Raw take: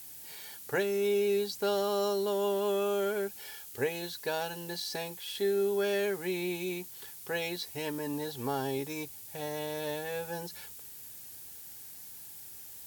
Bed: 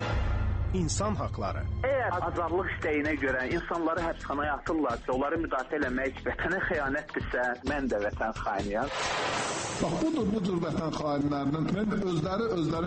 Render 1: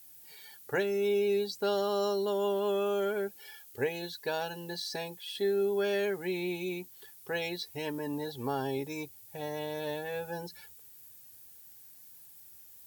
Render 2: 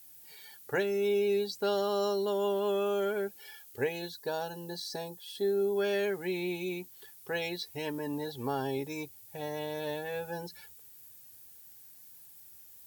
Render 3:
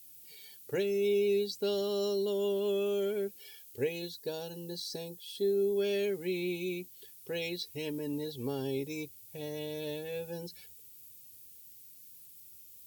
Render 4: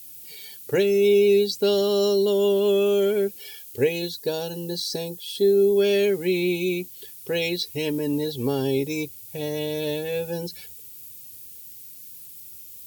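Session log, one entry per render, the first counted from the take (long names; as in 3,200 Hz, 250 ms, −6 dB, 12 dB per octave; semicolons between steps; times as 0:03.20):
broadband denoise 10 dB, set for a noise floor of −47 dBFS
0:04.08–0:05.76: parametric band 2,300 Hz −12 dB 0.88 octaves
flat-topped bell 1,100 Hz −12.5 dB
level +11 dB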